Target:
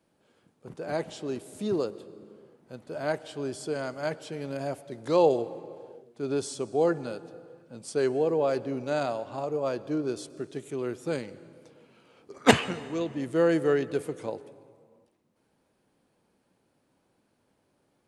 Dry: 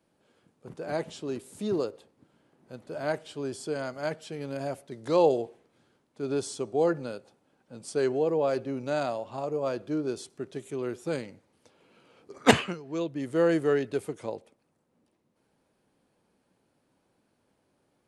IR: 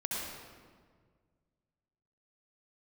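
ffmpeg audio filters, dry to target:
-filter_complex "[0:a]asplit=2[link_01][link_02];[1:a]atrim=start_sample=2205,afade=type=out:start_time=0.44:duration=0.01,atrim=end_sample=19845,asetrate=22932,aresample=44100[link_03];[link_02][link_03]afir=irnorm=-1:irlink=0,volume=-25dB[link_04];[link_01][link_04]amix=inputs=2:normalize=0"

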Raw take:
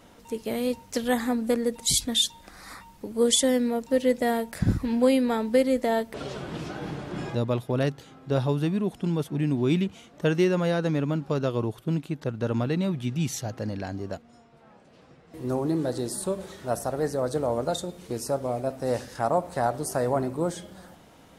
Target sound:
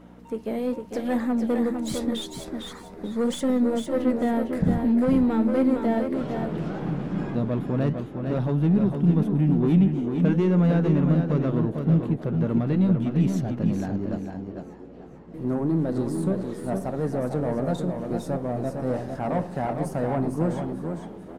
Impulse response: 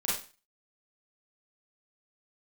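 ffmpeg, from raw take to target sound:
-filter_complex "[0:a]aeval=exprs='if(lt(val(0),0),0.708*val(0),val(0))':channel_layout=same,flanger=delay=2.9:depth=7.5:regen=-81:speed=0.83:shape=triangular,asoftclip=type=tanh:threshold=-26.5dB,asubboost=boost=3.5:cutoff=210,asplit=2[link_01][link_02];[link_02]aecho=0:1:456:0.501[link_03];[link_01][link_03]amix=inputs=2:normalize=0,aeval=exprs='val(0)+0.00282*(sin(2*PI*60*n/s)+sin(2*PI*2*60*n/s)/2+sin(2*PI*3*60*n/s)/3+sin(2*PI*4*60*n/s)/4+sin(2*PI*5*60*n/s)/5)':channel_layout=same,firequalizer=gain_entry='entry(110,0);entry(170,13);entry(3600,1);entry(5100,-2)':delay=0.05:min_phase=1,asplit=2[link_04][link_05];[link_05]asplit=4[link_06][link_07][link_08][link_09];[link_06]adelay=444,afreqshift=82,volume=-14dB[link_10];[link_07]adelay=888,afreqshift=164,volume=-20.9dB[link_11];[link_08]adelay=1332,afreqshift=246,volume=-27.9dB[link_12];[link_09]adelay=1776,afreqshift=328,volume=-34.8dB[link_13];[link_10][link_11][link_12][link_13]amix=inputs=4:normalize=0[link_14];[link_04][link_14]amix=inputs=2:normalize=0,volume=-4dB"

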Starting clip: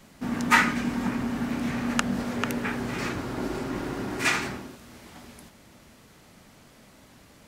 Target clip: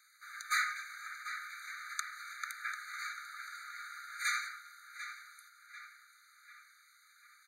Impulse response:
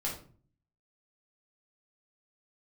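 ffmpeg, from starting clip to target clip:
-filter_complex "[0:a]bandreject=frequency=1900:width=14,acrossover=split=3100[link_01][link_02];[link_01]asoftclip=type=hard:threshold=-23.5dB[link_03];[link_03][link_02]amix=inputs=2:normalize=0,asplit=2[link_04][link_05];[link_05]adelay=743,lowpass=frequency=4100:poles=1,volume=-10dB,asplit=2[link_06][link_07];[link_07]adelay=743,lowpass=frequency=4100:poles=1,volume=0.54,asplit=2[link_08][link_09];[link_09]adelay=743,lowpass=frequency=4100:poles=1,volume=0.54,asplit=2[link_10][link_11];[link_11]adelay=743,lowpass=frequency=4100:poles=1,volume=0.54,asplit=2[link_12][link_13];[link_13]adelay=743,lowpass=frequency=4100:poles=1,volume=0.54,asplit=2[link_14][link_15];[link_15]adelay=743,lowpass=frequency=4100:poles=1,volume=0.54[link_16];[link_04][link_06][link_08][link_10][link_12][link_14][link_16]amix=inputs=7:normalize=0,afftfilt=real='re*eq(mod(floor(b*sr/1024/1200),2),1)':imag='im*eq(mod(floor(b*sr/1024/1200),2),1)':win_size=1024:overlap=0.75,volume=-4.5dB"

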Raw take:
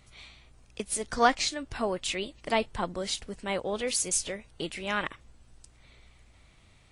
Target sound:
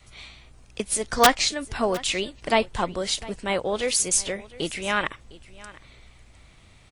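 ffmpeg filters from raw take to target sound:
ffmpeg -i in.wav -filter_complex "[0:a]adynamicequalizer=threshold=0.00562:dfrequency=220:dqfactor=1.5:tfrequency=220:tqfactor=1.5:attack=5:release=100:ratio=0.375:range=2.5:mode=cutabove:tftype=bell,aeval=exprs='(mod(3.55*val(0)+1,2)-1)/3.55':channel_layout=same,asplit=2[link_01][link_02];[link_02]aecho=0:1:707:0.1[link_03];[link_01][link_03]amix=inputs=2:normalize=0,volume=6dB" out.wav

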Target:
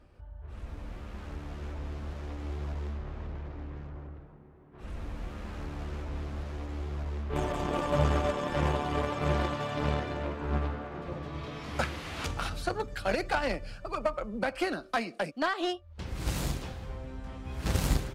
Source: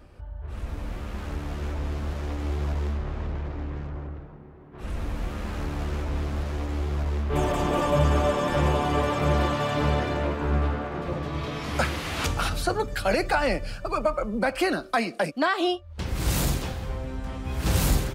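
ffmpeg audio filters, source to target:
ffmpeg -i in.wav -filter_complex "[0:a]highshelf=frequency=11000:gain=-9.5,asplit=2[link_01][link_02];[link_02]acrusher=bits=2:mix=0:aa=0.5,volume=-5dB[link_03];[link_01][link_03]amix=inputs=2:normalize=0,volume=-8dB" out.wav

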